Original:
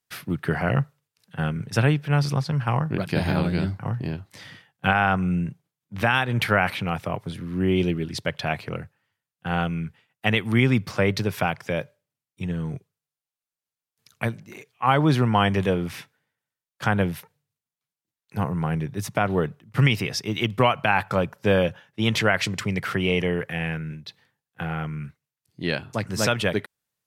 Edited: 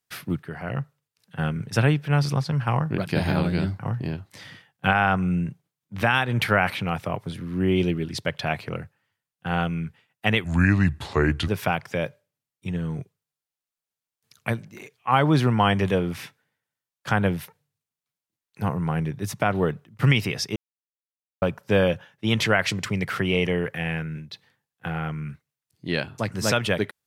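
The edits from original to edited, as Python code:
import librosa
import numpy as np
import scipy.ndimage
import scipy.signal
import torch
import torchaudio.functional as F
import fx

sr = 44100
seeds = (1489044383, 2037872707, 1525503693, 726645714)

y = fx.edit(x, sr, fx.fade_in_from(start_s=0.43, length_s=1.03, floor_db=-13.5),
    fx.speed_span(start_s=10.44, length_s=0.79, speed=0.76),
    fx.silence(start_s=20.31, length_s=0.86), tone=tone)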